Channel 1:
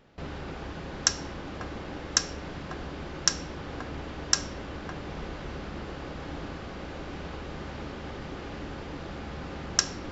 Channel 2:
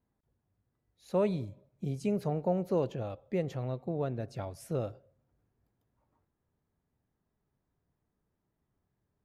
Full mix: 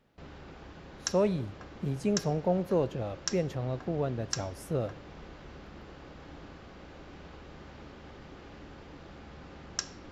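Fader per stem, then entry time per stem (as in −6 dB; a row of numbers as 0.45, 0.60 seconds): −10.0, +2.0 decibels; 0.00, 0.00 seconds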